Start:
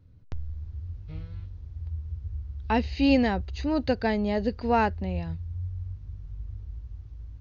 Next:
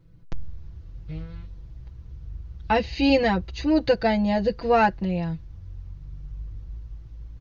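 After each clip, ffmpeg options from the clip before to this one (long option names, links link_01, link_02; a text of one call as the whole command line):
ffmpeg -i in.wav -af "aecho=1:1:6:0.96,volume=2dB" out.wav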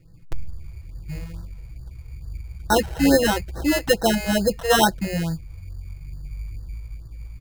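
ffmpeg -i in.wav -af "acrusher=samples=19:mix=1:aa=0.000001,afftfilt=real='re*(1-between(b*sr/1024,210*pow(2700/210,0.5+0.5*sin(2*PI*2.3*pts/sr))/1.41,210*pow(2700/210,0.5+0.5*sin(2*PI*2.3*pts/sr))*1.41))':imag='im*(1-between(b*sr/1024,210*pow(2700/210,0.5+0.5*sin(2*PI*2.3*pts/sr))/1.41,210*pow(2700/210,0.5+0.5*sin(2*PI*2.3*pts/sr))*1.41))':win_size=1024:overlap=0.75,volume=3dB" out.wav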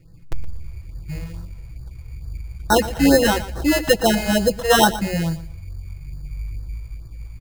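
ffmpeg -i in.wav -af "aecho=1:1:118|236|354:0.178|0.0427|0.0102,volume=2.5dB" out.wav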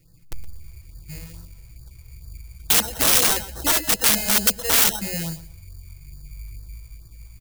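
ffmpeg -i in.wav -af "aeval=exprs='(mod(4.22*val(0)+1,2)-1)/4.22':channel_layout=same,crystalizer=i=4:c=0,volume=-8dB" out.wav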